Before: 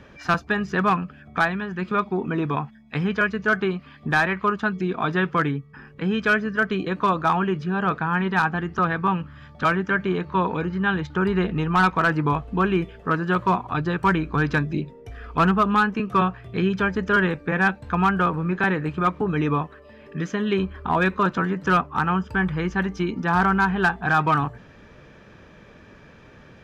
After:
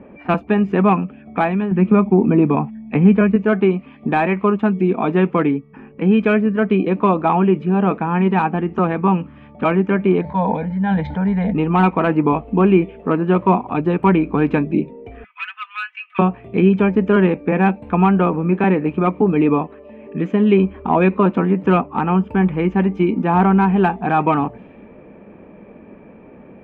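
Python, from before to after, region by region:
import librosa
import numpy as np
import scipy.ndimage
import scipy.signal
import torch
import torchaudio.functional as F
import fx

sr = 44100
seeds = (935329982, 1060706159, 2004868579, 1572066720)

y = fx.chain(x, sr, fx.bass_treble(bass_db=7, treble_db=-14),
    fx.band_squash(depth_pct=40), at=(1.71, 3.36))
y = fx.chain(y, sr, fx.fixed_phaser(hz=1800.0, stages=8),
    fx.sustainer(db_per_s=26.0), at=(10.21, 11.55))
y = fx.chain(y, sr, fx.steep_highpass(hz=1600.0, slope=36),
    fx.comb(ms=4.0, depth=0.92), at=(15.24, 16.19))
y = fx.curve_eq(y, sr, hz=(140.0, 200.0, 840.0, 1600.0, 2400.0, 5600.0, 8400.0), db=(0, 13, 9, -5, 8, -21, -9))
y = fx.env_lowpass(y, sr, base_hz=1400.0, full_db=-19.0)
y = F.gain(torch.from_numpy(y), -2.0).numpy()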